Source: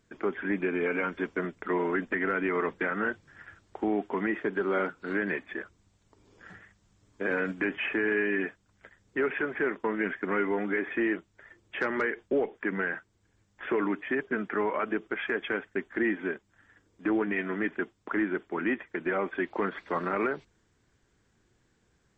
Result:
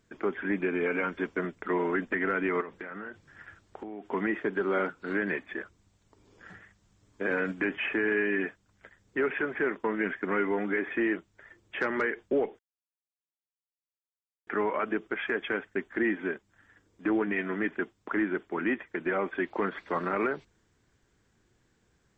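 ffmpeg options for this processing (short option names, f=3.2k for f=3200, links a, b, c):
-filter_complex "[0:a]asettb=1/sr,asplit=3[a][b][c];[a]atrim=end=2.614[d];[b]atrim=start=2.61:end=4.09,asetpts=PTS-STARTPTS,afade=t=in:d=0.004:c=qsin,afade=t=out:st=1.476:d=0.004:c=qsin,acompressor=threshold=-36dB:ratio=10:attack=3.2:release=140:knee=1:detection=peak[e];[c]atrim=start=4.086[f];[d][e]acrossfade=d=0.004:c1=hsin:c2=qsin[g];[g][f]acrossfade=d=0.004:c1=qsin:c2=hsin,asplit=3[h][i][j];[h]atrim=end=12.59,asetpts=PTS-STARTPTS,afade=t=out:st=12.586:d=0.004:c=hsin[k];[i]atrim=start=12.59:end=14.47,asetpts=PTS-STARTPTS,volume=0[l];[j]atrim=start=14.47,asetpts=PTS-STARTPTS,afade=t=in:d=0.004:c=hsin[m];[k][l][m]concat=n=3:v=0:a=1"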